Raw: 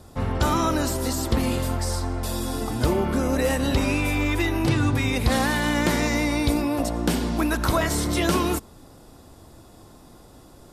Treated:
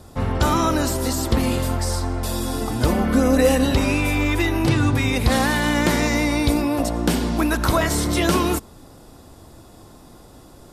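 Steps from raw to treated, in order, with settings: 2.88–3.65 comb 4 ms, depth 76%; gain +3 dB

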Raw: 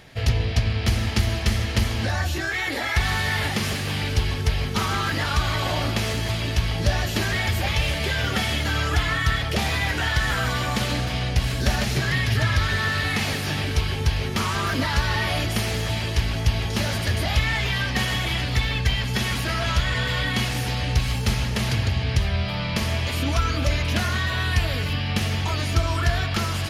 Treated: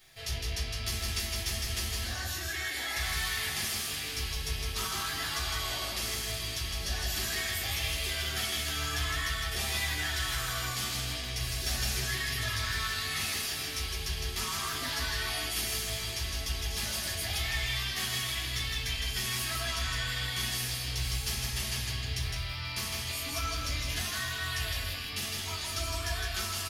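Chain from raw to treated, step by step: echo 0.16 s -3.5 dB; shoebox room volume 170 m³, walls furnished, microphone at 3.7 m; bit-crush 11-bit; pre-emphasis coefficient 0.9; gain -7.5 dB

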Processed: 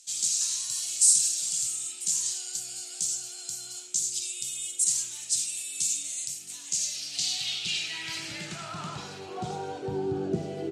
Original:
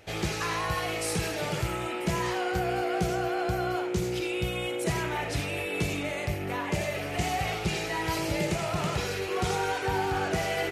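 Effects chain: notches 50/100 Hz; band-pass sweep 7400 Hz -> 420 Hz, 6.59–10.1; graphic EQ 125/250/500/1000/2000/4000/8000 Hz +10/+7/-12/-8/-11/+6/+12 dB; gain +8.5 dB

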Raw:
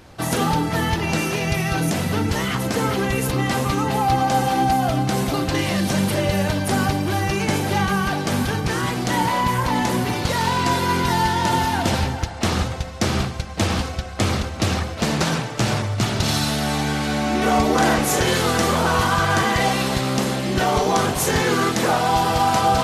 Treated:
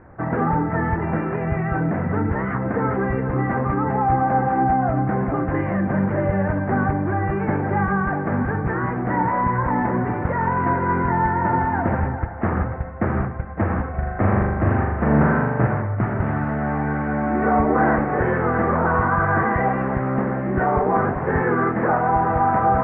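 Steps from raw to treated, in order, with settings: steep low-pass 1900 Hz 48 dB/oct; 13.9–15.67 flutter echo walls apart 7 m, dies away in 0.94 s

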